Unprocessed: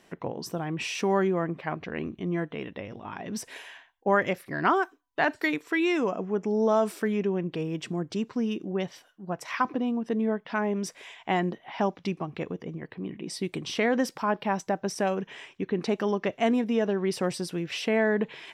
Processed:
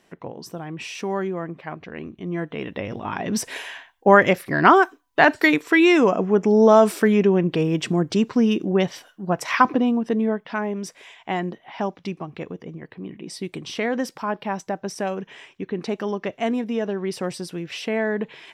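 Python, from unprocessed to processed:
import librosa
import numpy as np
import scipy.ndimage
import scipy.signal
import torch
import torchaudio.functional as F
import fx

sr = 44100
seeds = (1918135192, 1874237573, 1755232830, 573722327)

y = fx.gain(x, sr, db=fx.line((2.13, -1.5), (2.92, 10.0), (9.64, 10.0), (10.77, 0.5)))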